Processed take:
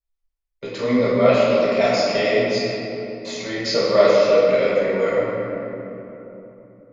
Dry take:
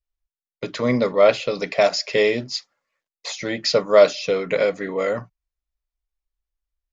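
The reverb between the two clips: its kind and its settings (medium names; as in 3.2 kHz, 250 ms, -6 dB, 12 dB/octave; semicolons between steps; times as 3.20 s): simulated room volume 180 m³, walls hard, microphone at 1.2 m; trim -7.5 dB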